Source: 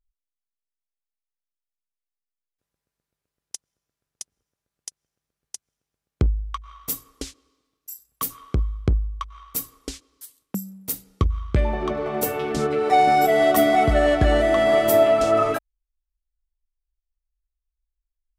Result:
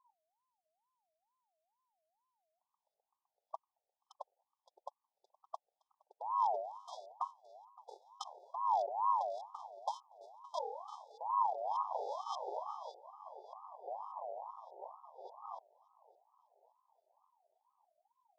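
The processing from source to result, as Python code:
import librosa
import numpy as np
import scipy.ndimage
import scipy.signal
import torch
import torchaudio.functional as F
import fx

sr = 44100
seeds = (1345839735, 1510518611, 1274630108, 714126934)

y = np.r_[np.sort(x[:len(x) // 128 * 128].reshape(-1, 128), axis=1).ravel(), x[len(x) // 128 * 128:]]
y = fx.env_lowpass_down(y, sr, base_hz=930.0, full_db=-14.0)
y = fx.over_compress(y, sr, threshold_db=-29.0, ratio=-1.0)
y = fx.echo_feedback(y, sr, ms=567, feedback_pct=56, wet_db=-20.5)
y = fx.filter_lfo_lowpass(y, sr, shape='saw_up', hz=1.7, low_hz=810.0, high_hz=3400.0, q=7.9)
y = fx.brickwall_bandstop(y, sr, low_hz=260.0, high_hz=4100.0)
y = fx.ring_lfo(y, sr, carrier_hz=830.0, swing_pct=25, hz=2.2)
y = y * 10.0 ** (-3.5 / 20.0)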